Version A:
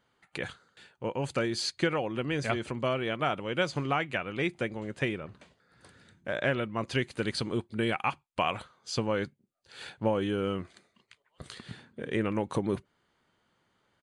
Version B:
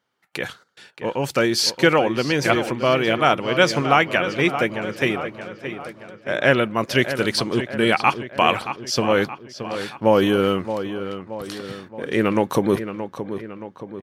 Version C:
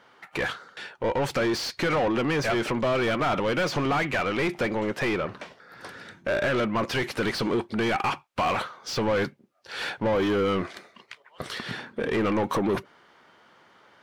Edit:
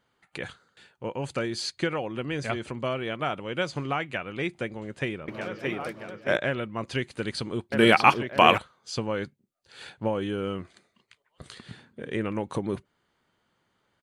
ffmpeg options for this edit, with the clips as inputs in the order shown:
ffmpeg -i take0.wav -i take1.wav -filter_complex "[1:a]asplit=2[link_01][link_02];[0:a]asplit=3[link_03][link_04][link_05];[link_03]atrim=end=5.282[link_06];[link_01]atrim=start=5.278:end=6.372[link_07];[link_04]atrim=start=6.368:end=7.722[link_08];[link_02]atrim=start=7.718:end=8.582[link_09];[link_05]atrim=start=8.578[link_10];[link_06][link_07]acrossfade=duration=0.004:curve1=hsin:curve2=hsin[link_11];[link_11][link_08]acrossfade=duration=0.004:curve1=hsin:curve2=hsin[link_12];[link_12][link_09]acrossfade=duration=0.004:curve1=hsin:curve2=hsin[link_13];[link_13][link_10]acrossfade=duration=0.004:curve1=hsin:curve2=hsin" out.wav

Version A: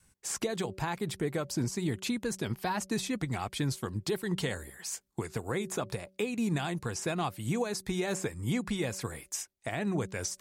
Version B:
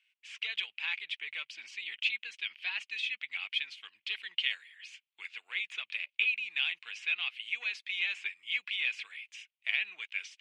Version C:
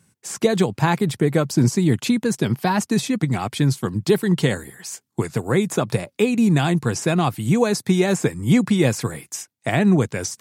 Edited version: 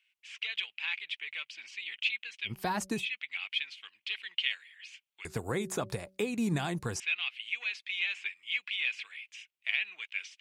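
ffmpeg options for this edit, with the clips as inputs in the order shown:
ffmpeg -i take0.wav -i take1.wav -filter_complex "[0:a]asplit=2[link_01][link_02];[1:a]asplit=3[link_03][link_04][link_05];[link_03]atrim=end=2.6[link_06];[link_01]atrim=start=2.44:end=3.07[link_07];[link_04]atrim=start=2.91:end=5.252[link_08];[link_02]atrim=start=5.248:end=7.002[link_09];[link_05]atrim=start=6.998[link_10];[link_06][link_07]acrossfade=duration=0.16:curve1=tri:curve2=tri[link_11];[link_11][link_08]acrossfade=duration=0.16:curve1=tri:curve2=tri[link_12];[link_12][link_09]acrossfade=duration=0.004:curve1=hsin:curve2=hsin[link_13];[link_13][link_10]acrossfade=duration=0.004:curve1=hsin:curve2=hsin" out.wav

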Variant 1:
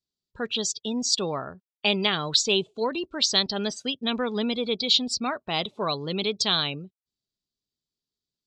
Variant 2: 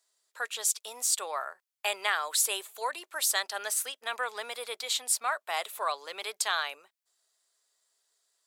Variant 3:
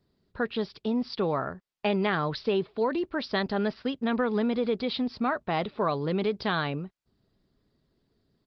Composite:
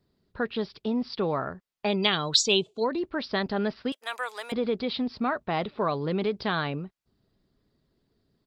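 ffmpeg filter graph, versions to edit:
ffmpeg -i take0.wav -i take1.wav -i take2.wav -filter_complex "[2:a]asplit=3[link_01][link_02][link_03];[link_01]atrim=end=2.06[link_04];[0:a]atrim=start=1.82:end=3.04[link_05];[link_02]atrim=start=2.8:end=3.922[link_06];[1:a]atrim=start=3.918:end=4.522[link_07];[link_03]atrim=start=4.518[link_08];[link_04][link_05]acrossfade=duration=0.24:curve1=tri:curve2=tri[link_09];[link_09][link_06]acrossfade=duration=0.24:curve1=tri:curve2=tri[link_10];[link_10][link_07]acrossfade=duration=0.004:curve1=hsin:curve2=hsin[link_11];[link_11][link_08]acrossfade=duration=0.004:curve1=hsin:curve2=hsin" out.wav

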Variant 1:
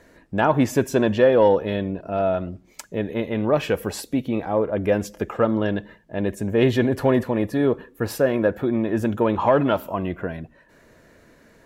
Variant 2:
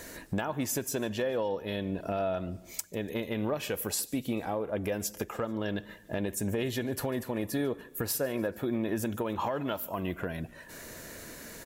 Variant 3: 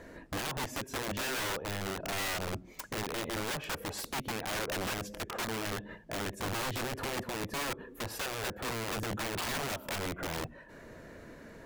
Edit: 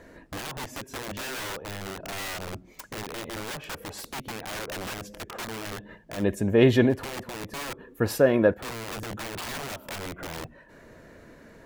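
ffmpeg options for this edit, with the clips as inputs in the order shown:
ffmpeg -i take0.wav -i take1.wav -i take2.wav -filter_complex "[0:a]asplit=2[link_01][link_02];[2:a]asplit=3[link_03][link_04][link_05];[link_03]atrim=end=6.25[link_06];[link_01]atrim=start=6.15:end=6.99[link_07];[link_04]atrim=start=6.89:end=7.942[link_08];[link_02]atrim=start=7.938:end=8.542[link_09];[link_05]atrim=start=8.538[link_10];[link_06][link_07]acrossfade=duration=0.1:curve1=tri:curve2=tri[link_11];[link_11][link_08]acrossfade=duration=0.1:curve1=tri:curve2=tri[link_12];[link_12][link_09]acrossfade=duration=0.004:curve1=hsin:curve2=hsin[link_13];[link_13][link_10]acrossfade=duration=0.004:curve1=hsin:curve2=hsin" out.wav

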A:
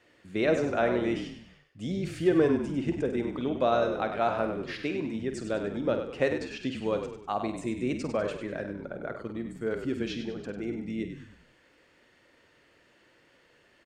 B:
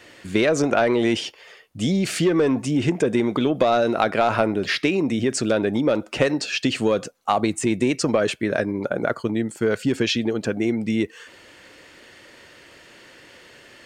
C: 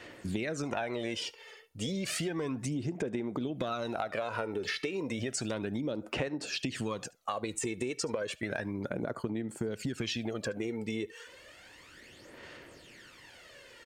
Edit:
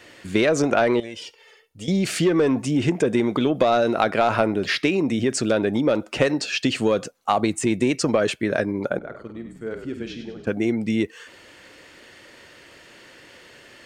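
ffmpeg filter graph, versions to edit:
ffmpeg -i take0.wav -i take1.wav -i take2.wav -filter_complex "[1:a]asplit=3[link_01][link_02][link_03];[link_01]atrim=end=1.002[link_04];[2:a]atrim=start=0.998:end=1.882[link_05];[link_02]atrim=start=1.878:end=8.992[link_06];[0:a]atrim=start=8.988:end=10.472[link_07];[link_03]atrim=start=10.468[link_08];[link_04][link_05]acrossfade=duration=0.004:curve1=hsin:curve2=hsin[link_09];[link_09][link_06]acrossfade=duration=0.004:curve1=hsin:curve2=hsin[link_10];[link_10][link_07]acrossfade=duration=0.004:curve1=hsin:curve2=hsin[link_11];[link_11][link_08]acrossfade=duration=0.004:curve1=hsin:curve2=hsin" out.wav

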